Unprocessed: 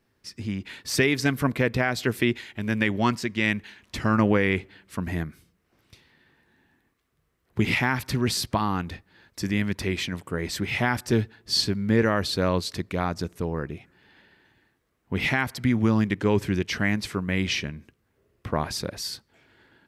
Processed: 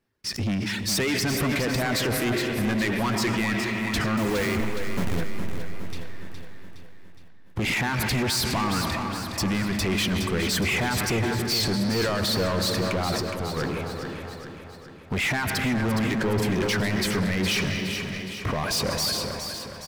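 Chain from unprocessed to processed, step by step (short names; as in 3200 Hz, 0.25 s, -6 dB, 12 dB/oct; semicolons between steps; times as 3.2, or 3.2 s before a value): 4.17–5.21 level-crossing sampler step -27 dBFS; reverb removal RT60 1.1 s; digital reverb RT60 2.8 s, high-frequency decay 0.7×, pre-delay 65 ms, DRR 13 dB; 13.15–13.57 compressor, threshold -40 dBFS, peak gain reduction 15.5 dB; limiter -21 dBFS, peak gain reduction 11 dB; sample leveller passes 3; on a send: feedback echo 0.415 s, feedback 54%, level -8 dB; on the sum: sustainer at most 26 dB/s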